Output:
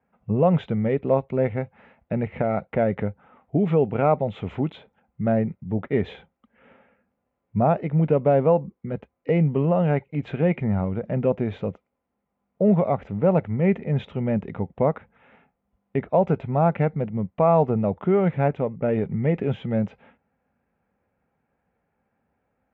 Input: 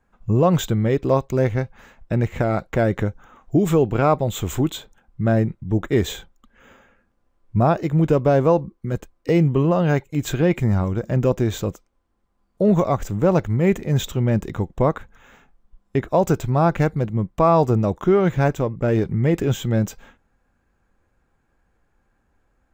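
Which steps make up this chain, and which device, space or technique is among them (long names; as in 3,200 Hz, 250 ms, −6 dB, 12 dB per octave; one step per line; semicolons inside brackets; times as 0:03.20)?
bass cabinet (loudspeaker in its box 78–2,400 Hz, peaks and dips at 80 Hz −9 dB, 120 Hz −8 dB, 330 Hz −10 dB, 1,100 Hz −8 dB, 1,600 Hz −8 dB)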